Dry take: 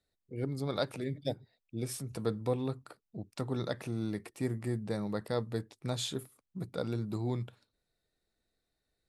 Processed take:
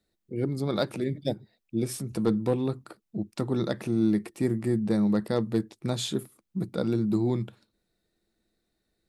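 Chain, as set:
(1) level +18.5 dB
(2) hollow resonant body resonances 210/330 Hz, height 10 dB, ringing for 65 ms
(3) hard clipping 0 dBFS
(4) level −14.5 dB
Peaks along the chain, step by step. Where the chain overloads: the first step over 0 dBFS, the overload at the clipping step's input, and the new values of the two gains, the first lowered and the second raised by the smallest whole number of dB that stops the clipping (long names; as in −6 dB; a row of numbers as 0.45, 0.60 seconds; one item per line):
+1.0, +4.0, 0.0, −14.5 dBFS
step 1, 4.0 dB
step 1 +14.5 dB, step 4 −10.5 dB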